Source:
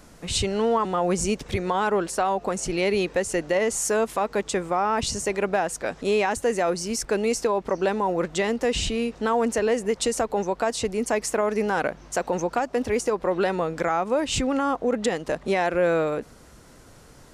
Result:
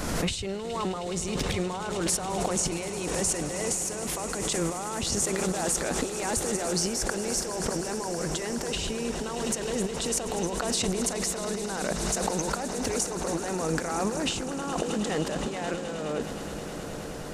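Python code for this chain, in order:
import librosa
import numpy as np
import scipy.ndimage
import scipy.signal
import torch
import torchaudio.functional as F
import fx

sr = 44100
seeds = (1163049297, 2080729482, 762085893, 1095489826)

p1 = fx.over_compress(x, sr, threshold_db=-33.0, ratio=-1.0)
p2 = p1 + fx.echo_swell(p1, sr, ms=105, loudest=8, wet_db=-16.5, dry=0)
y = fx.pre_swell(p2, sr, db_per_s=30.0)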